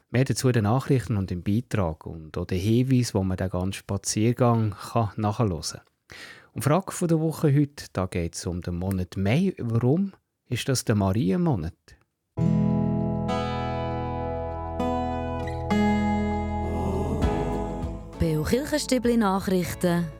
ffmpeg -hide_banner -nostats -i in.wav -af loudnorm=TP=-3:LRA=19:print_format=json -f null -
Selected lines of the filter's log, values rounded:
"input_i" : "-25.7",
"input_tp" : "-8.1",
"input_lra" : "1.8",
"input_thresh" : "-36.0",